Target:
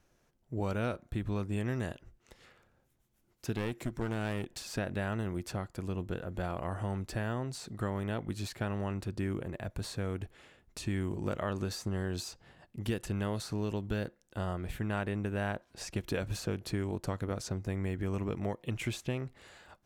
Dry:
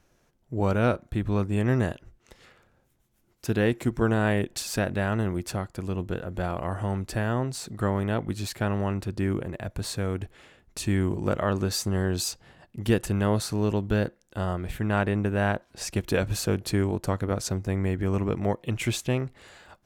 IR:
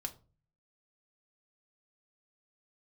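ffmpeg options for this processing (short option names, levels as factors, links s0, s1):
-filter_complex "[0:a]acrossover=split=2100|6800[s0][s1][s2];[s0]acompressor=threshold=0.0562:ratio=4[s3];[s1]acompressor=threshold=0.0126:ratio=4[s4];[s2]acompressor=threshold=0.00447:ratio=4[s5];[s3][s4][s5]amix=inputs=3:normalize=0,asettb=1/sr,asplit=3[s6][s7][s8];[s6]atrim=end=3.534[s9];[s7]atrim=start=3.53:end=4.6,asetpts=PTS-STARTPTS,afade=t=in:d=0.004:c=qsin,afade=t=out:st=1.066:d=0.004:c=qsin,aeval=exprs='clip(val(0),-1,0.0237)':c=same[s10];[s8]atrim=start=4.596[s11];[s9][s10]acrossfade=d=0.004:c1=hsin:c2=qsin[s12];[s12][s11]acrossfade=d=0.004:c1=qsin:c2=hsin,volume=0.562"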